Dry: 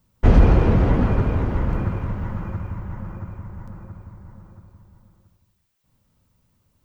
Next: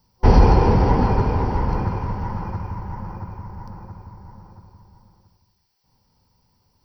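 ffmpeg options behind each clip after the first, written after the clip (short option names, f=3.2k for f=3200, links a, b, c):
-af "superequalizer=7b=1.58:9b=3.16:14b=3.98:15b=0.355:16b=0.562"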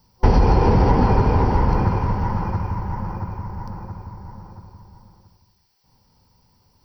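-af "acompressor=threshold=-15dB:ratio=6,volume=4.5dB"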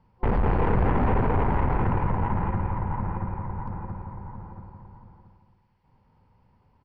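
-filter_complex "[0:a]aeval=exprs='(tanh(10*val(0)+0.45)-tanh(0.45))/10':c=same,lowpass=f=2.6k:w=0.5412,lowpass=f=2.6k:w=1.3066,asplit=2[a][b];[b]aecho=0:1:223|446|669|892:0.316|0.13|0.0532|0.0218[c];[a][c]amix=inputs=2:normalize=0"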